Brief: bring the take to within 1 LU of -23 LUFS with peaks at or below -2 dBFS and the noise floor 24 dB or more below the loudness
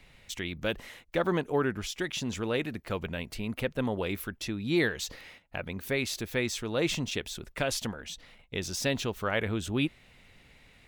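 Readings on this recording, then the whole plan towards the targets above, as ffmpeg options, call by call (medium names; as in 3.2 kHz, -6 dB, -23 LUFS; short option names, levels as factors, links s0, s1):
loudness -32.0 LUFS; peak level -15.0 dBFS; loudness target -23.0 LUFS
-> -af "volume=2.82"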